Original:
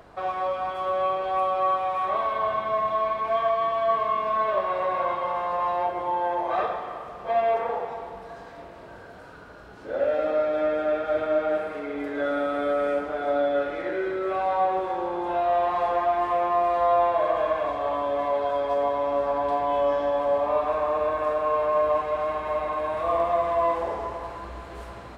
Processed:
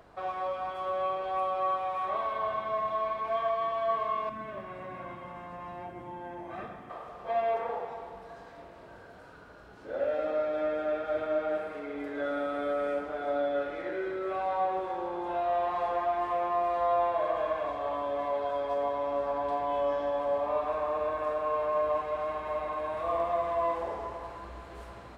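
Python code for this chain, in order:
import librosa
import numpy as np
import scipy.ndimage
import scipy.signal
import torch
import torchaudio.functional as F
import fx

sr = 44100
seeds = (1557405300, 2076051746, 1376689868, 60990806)

y = fx.graphic_eq(x, sr, hz=(125, 250, 500, 1000, 4000), db=(6, 9, -11, -10, -10), at=(4.29, 6.9))
y = y * librosa.db_to_amplitude(-6.0)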